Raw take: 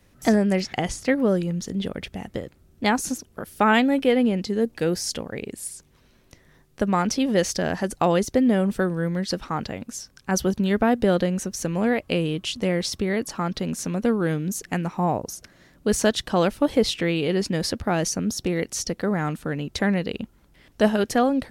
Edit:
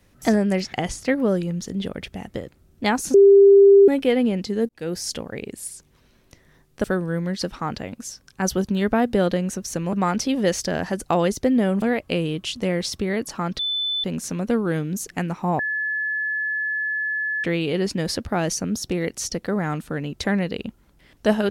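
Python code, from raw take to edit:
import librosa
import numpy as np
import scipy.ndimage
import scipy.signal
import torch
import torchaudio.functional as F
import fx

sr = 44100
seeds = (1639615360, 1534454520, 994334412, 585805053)

y = fx.edit(x, sr, fx.bleep(start_s=3.14, length_s=0.74, hz=397.0, db=-7.5),
    fx.fade_in_span(start_s=4.69, length_s=0.49, curve='qsin'),
    fx.move(start_s=6.84, length_s=1.89, to_s=11.82),
    fx.insert_tone(at_s=13.59, length_s=0.45, hz=3510.0, db=-21.5),
    fx.bleep(start_s=15.14, length_s=1.85, hz=1720.0, db=-22.0), tone=tone)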